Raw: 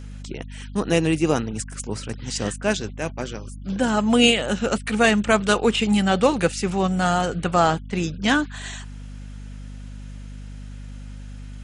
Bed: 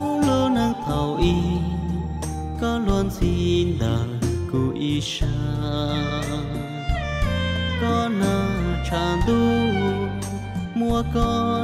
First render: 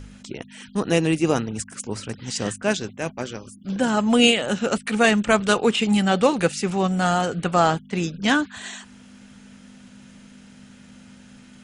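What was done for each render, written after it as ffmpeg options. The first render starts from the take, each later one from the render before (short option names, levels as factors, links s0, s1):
-af "bandreject=f=50:t=h:w=4,bandreject=f=100:t=h:w=4,bandreject=f=150:t=h:w=4"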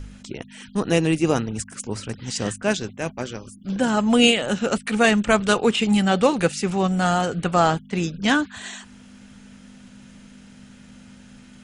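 -af "lowshelf=f=64:g=8"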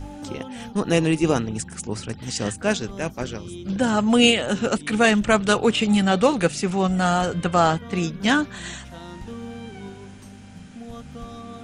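-filter_complex "[1:a]volume=0.141[s0];[0:a][s0]amix=inputs=2:normalize=0"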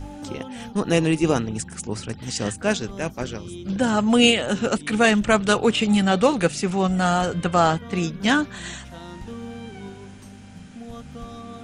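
-af anull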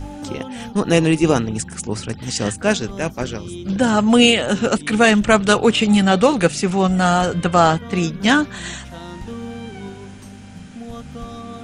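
-af "volume=1.68,alimiter=limit=0.891:level=0:latency=1"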